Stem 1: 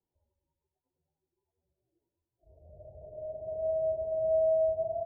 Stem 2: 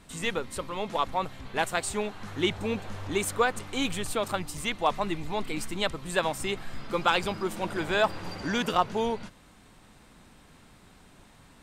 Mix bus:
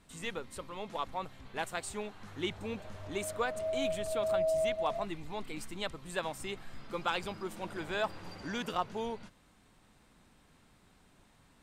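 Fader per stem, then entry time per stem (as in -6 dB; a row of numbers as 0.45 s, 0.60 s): -4.0 dB, -9.0 dB; 0.00 s, 0.00 s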